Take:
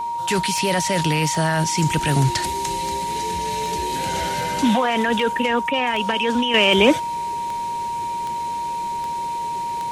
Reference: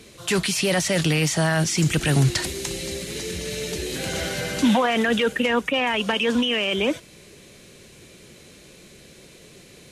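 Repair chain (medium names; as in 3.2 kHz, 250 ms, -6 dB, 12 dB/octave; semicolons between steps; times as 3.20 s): de-click; band-stop 940 Hz, Q 30; gain correction -8 dB, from 6.54 s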